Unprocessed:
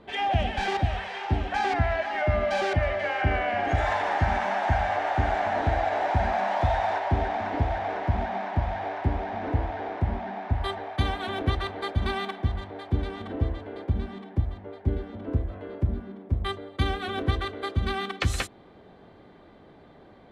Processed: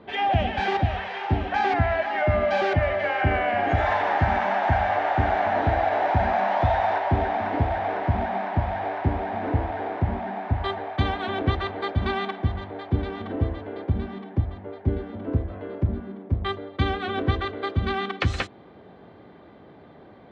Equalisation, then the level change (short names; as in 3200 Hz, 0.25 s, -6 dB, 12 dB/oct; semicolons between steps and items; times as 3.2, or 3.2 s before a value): HPF 73 Hz; air absorption 160 m; +4.0 dB